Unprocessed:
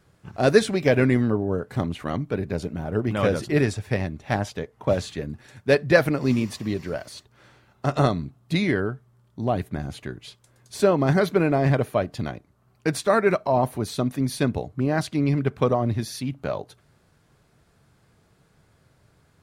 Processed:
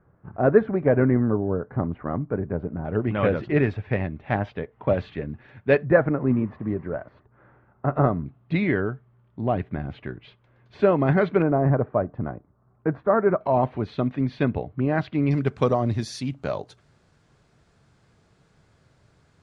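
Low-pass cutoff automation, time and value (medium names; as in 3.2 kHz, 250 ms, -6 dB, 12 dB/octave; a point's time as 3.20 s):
low-pass 24 dB/octave
1.5 kHz
from 2.85 s 2.8 kHz
from 5.85 s 1.6 kHz
from 8.26 s 2.8 kHz
from 11.42 s 1.4 kHz
from 13.41 s 3 kHz
from 15.31 s 8.1 kHz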